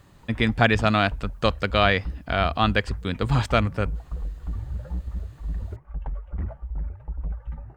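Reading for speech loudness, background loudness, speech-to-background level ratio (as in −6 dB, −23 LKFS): −23.5 LKFS, −35.0 LKFS, 11.5 dB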